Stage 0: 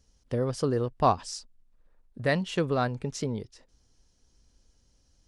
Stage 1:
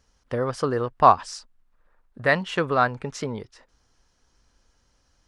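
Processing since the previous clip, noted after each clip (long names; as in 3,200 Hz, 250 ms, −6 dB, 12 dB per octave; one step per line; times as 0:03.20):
parametric band 1,300 Hz +13 dB 2.2 octaves
level −1.5 dB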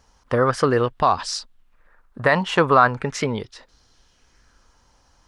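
brickwall limiter −13 dBFS, peak gain reduction 11.5 dB
auto-filter bell 0.4 Hz 870–4,200 Hz +8 dB
level +6 dB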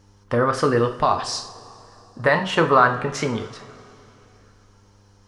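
hum with harmonics 100 Hz, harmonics 5, −56 dBFS −4 dB per octave
coupled-rooms reverb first 0.45 s, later 3.2 s, from −19 dB, DRR 5 dB
level −1.5 dB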